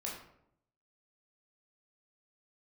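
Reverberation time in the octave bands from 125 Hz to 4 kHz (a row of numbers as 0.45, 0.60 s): 0.95, 0.90, 0.80, 0.70, 0.55, 0.40 s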